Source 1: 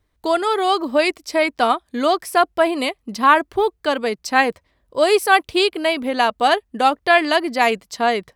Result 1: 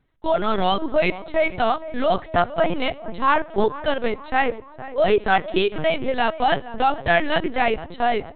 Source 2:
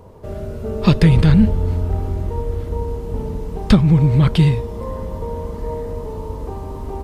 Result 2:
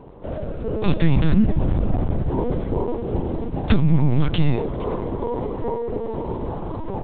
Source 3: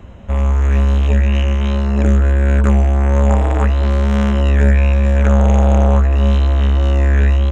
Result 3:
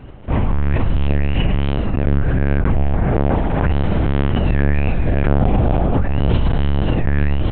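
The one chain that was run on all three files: wow and flutter 26 cents; in parallel at +3 dB: limiter -11 dBFS; on the sum: dynamic EQ 1200 Hz, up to -3 dB, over -31 dBFS, Q 5.8; on a send: tape echo 0.462 s, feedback 66%, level -13 dB, low-pass 1200 Hz; on the sum: Schroeder reverb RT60 0.56 s, combs from 28 ms, DRR 20 dB; LPC vocoder at 8 kHz pitch kept; gain -8 dB

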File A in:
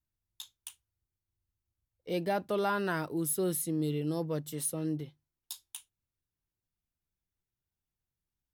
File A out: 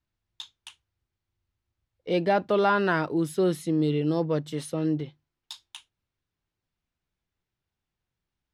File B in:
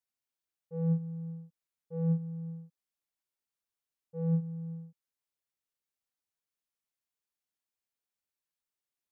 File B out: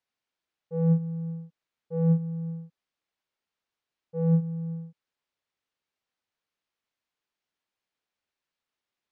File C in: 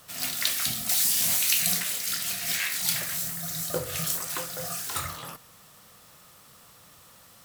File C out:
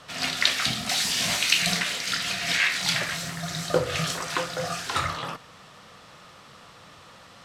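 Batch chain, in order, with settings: LPF 4100 Hz 12 dB/oct; low shelf 130 Hz -5.5 dB; gain +8.5 dB

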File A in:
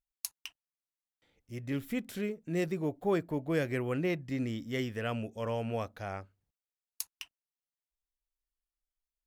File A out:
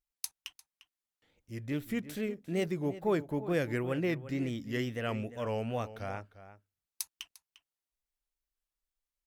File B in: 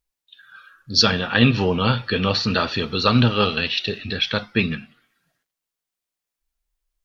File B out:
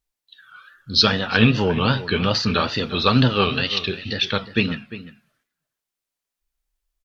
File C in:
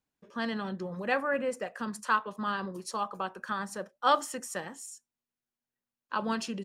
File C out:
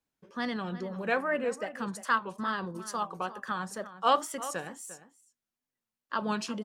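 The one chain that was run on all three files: wow and flutter 120 cents; outdoor echo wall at 60 m, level -14 dB

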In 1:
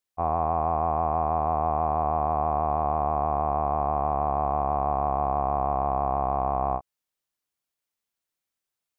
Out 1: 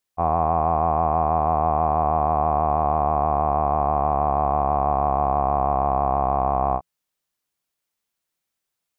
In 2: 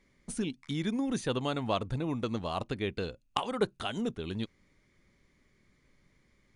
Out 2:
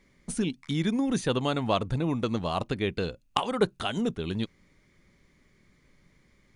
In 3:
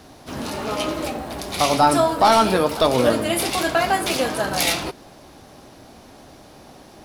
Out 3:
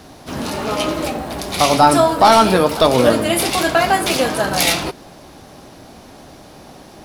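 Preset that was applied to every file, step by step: bell 170 Hz +3.5 dB 0.23 oct; gain +4.5 dB

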